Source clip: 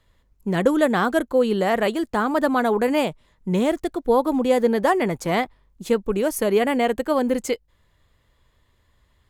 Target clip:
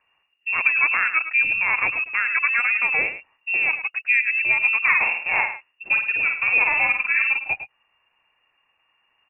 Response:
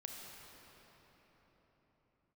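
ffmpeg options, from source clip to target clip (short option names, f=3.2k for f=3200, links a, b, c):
-filter_complex "[0:a]tremolo=f=130:d=0.4,highpass=f=76:w=0.5412,highpass=f=76:w=1.3066,aemphasis=mode=production:type=75kf,asplit=2[a][b];[b]adelay=105,volume=-11dB,highshelf=f=4k:g=-2.36[c];[a][c]amix=inputs=2:normalize=0,lowpass=f=2.5k:t=q:w=0.5098,lowpass=f=2.5k:t=q:w=0.6013,lowpass=f=2.5k:t=q:w=0.9,lowpass=f=2.5k:t=q:w=2.563,afreqshift=-2900,asplit=3[d][e][f];[d]afade=t=out:st=4.82:d=0.02[g];[e]asplit=2[h][i];[i]adelay=50,volume=-4dB[j];[h][j]amix=inputs=2:normalize=0,afade=t=in:st=4.82:d=0.02,afade=t=out:st=7.36:d=0.02[k];[f]afade=t=in:st=7.36:d=0.02[l];[g][k][l]amix=inputs=3:normalize=0"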